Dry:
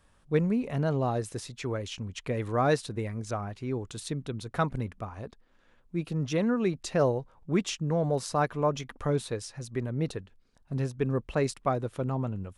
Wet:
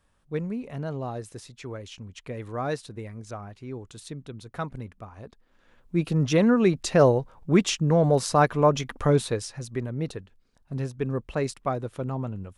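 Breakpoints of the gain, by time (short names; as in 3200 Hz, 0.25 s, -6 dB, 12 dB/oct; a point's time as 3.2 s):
5.1 s -4.5 dB
5.97 s +7 dB
9.2 s +7 dB
9.98 s 0 dB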